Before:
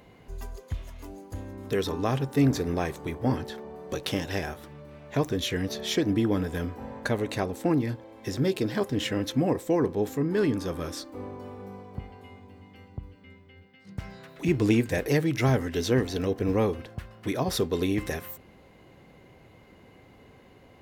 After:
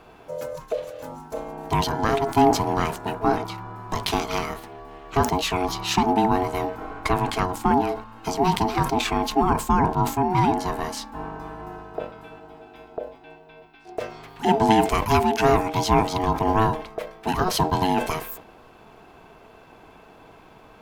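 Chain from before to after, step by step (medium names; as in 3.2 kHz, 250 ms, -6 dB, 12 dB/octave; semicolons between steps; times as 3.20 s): ring modulator 550 Hz; decay stretcher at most 130 dB/s; trim +7.5 dB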